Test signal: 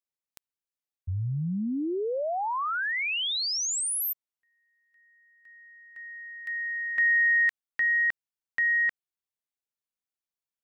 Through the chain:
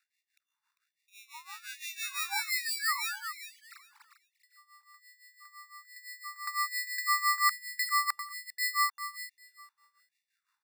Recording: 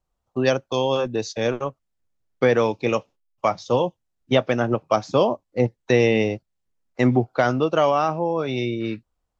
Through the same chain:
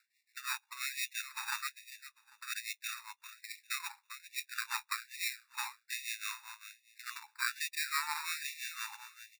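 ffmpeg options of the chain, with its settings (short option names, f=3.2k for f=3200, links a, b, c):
-af "areverse,acompressor=threshold=-29dB:ratio=20:attack=83:release=154:knee=1:detection=rms,areverse,alimiter=limit=-24dB:level=0:latency=1:release=68,acompressor=mode=upward:threshold=-46dB:ratio=2.5:attack=0.62:release=220:knee=2.83:detection=peak,aeval=exprs='0.0631*(cos(1*acos(clip(val(0)/0.0631,-1,1)))-cos(1*PI/2))+0.00708*(cos(3*acos(clip(val(0)/0.0631,-1,1)))-cos(3*PI/2))+0.0126*(cos(6*acos(clip(val(0)/0.0631,-1,1)))-cos(6*PI/2))+0.01*(cos(8*acos(clip(val(0)/0.0631,-1,1)))-cos(8*PI/2))':c=same,aeval=exprs='val(0)+0.00112*(sin(2*PI*60*n/s)+sin(2*PI*2*60*n/s)/2+sin(2*PI*3*60*n/s)/3+sin(2*PI*4*60*n/s)/4+sin(2*PI*5*60*n/s)/5)':c=same,tremolo=f=5.9:d=0.86,highpass=f=320:t=q:w=0.5412,highpass=f=320:t=q:w=1.307,lowpass=f=2.8k:t=q:w=0.5176,lowpass=f=2.8k:t=q:w=0.7071,lowpass=f=2.8k:t=q:w=1.932,afreqshift=100,acrusher=samples=14:mix=1:aa=0.000001,aecho=1:1:398|796|1194:0.282|0.0535|0.0102,afftfilt=real='re*gte(b*sr/1024,790*pow(1800/790,0.5+0.5*sin(2*PI*1.2*pts/sr)))':imag='im*gte(b*sr/1024,790*pow(1800/790,0.5+0.5*sin(2*PI*1.2*pts/sr)))':win_size=1024:overlap=0.75,volume=6.5dB"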